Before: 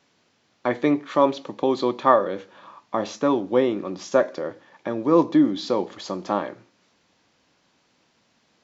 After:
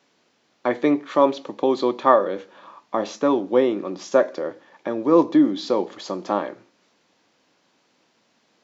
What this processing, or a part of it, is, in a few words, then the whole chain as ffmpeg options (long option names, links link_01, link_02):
filter by subtraction: -filter_complex "[0:a]asplit=2[link_01][link_02];[link_02]lowpass=340,volume=-1[link_03];[link_01][link_03]amix=inputs=2:normalize=0"